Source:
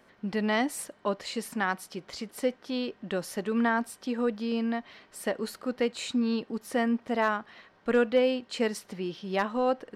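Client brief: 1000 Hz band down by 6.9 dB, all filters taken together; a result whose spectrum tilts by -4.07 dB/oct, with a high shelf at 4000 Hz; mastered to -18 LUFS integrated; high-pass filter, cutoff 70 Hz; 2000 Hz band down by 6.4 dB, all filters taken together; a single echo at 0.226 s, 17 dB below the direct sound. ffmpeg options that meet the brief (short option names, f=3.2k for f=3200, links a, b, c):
-af "highpass=70,equalizer=f=1k:t=o:g=-8.5,equalizer=f=2k:t=o:g=-6,highshelf=f=4k:g=5,aecho=1:1:226:0.141,volume=13.5dB"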